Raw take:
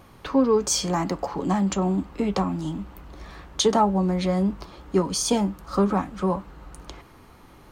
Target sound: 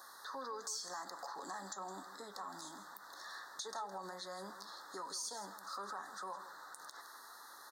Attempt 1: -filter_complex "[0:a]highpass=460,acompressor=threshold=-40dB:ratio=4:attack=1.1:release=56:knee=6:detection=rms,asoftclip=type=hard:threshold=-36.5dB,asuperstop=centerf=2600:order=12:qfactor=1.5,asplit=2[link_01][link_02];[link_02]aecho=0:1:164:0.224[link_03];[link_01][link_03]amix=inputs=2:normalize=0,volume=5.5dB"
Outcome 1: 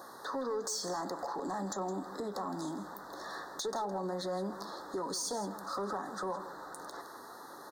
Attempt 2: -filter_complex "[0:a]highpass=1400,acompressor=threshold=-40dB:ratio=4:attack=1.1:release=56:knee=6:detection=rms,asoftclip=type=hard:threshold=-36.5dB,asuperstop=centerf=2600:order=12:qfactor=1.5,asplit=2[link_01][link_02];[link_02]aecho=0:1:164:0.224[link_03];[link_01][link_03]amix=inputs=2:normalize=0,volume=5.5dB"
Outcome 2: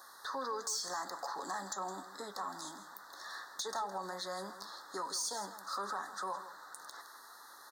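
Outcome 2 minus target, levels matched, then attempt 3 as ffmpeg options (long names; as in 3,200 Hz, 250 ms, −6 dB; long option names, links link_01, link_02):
downward compressor: peak gain reduction −6 dB
-filter_complex "[0:a]highpass=1400,acompressor=threshold=-48dB:ratio=4:attack=1.1:release=56:knee=6:detection=rms,asoftclip=type=hard:threshold=-36.5dB,asuperstop=centerf=2600:order=12:qfactor=1.5,asplit=2[link_01][link_02];[link_02]aecho=0:1:164:0.224[link_03];[link_01][link_03]amix=inputs=2:normalize=0,volume=5.5dB"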